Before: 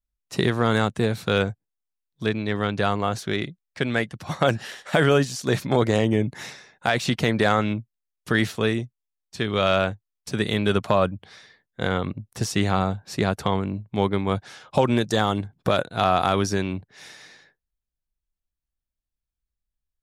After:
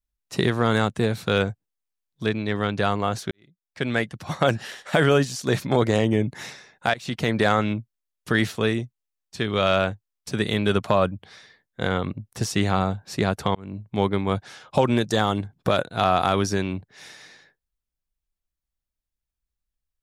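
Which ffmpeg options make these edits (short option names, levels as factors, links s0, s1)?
-filter_complex "[0:a]asplit=4[s0][s1][s2][s3];[s0]atrim=end=3.31,asetpts=PTS-STARTPTS,afade=t=out:st=3.306:d=0.004:c=hsin[s4];[s1]atrim=start=3.31:end=6.94,asetpts=PTS-STARTPTS,afade=t=in:d=0.57:c=qua,afade=t=out:st=3.626:d=0.004:c=hsin:silence=0.0841395[s5];[s2]atrim=start=6.94:end=13.55,asetpts=PTS-STARTPTS,afade=t=in:d=0.54:c=qsin:silence=0.0841395,afade=t=out:st=6.606:d=0.004:c=hsin[s6];[s3]atrim=start=13.55,asetpts=PTS-STARTPTS,afade=t=in:d=0.32[s7];[s4][s5][s6][s7]concat=n=4:v=0:a=1"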